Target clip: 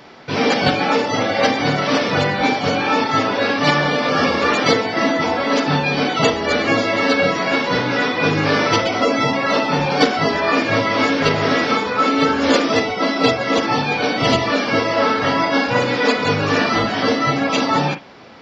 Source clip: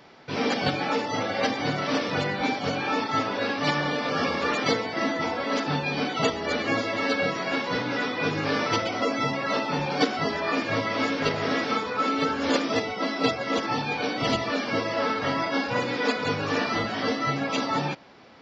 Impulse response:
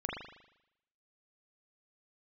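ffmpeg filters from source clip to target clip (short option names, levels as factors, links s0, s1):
-filter_complex "[0:a]acontrast=50,asplit=2[s0][s1];[1:a]atrim=start_sample=2205,atrim=end_sample=3087[s2];[s1][s2]afir=irnorm=-1:irlink=0,volume=0.473[s3];[s0][s3]amix=inputs=2:normalize=0"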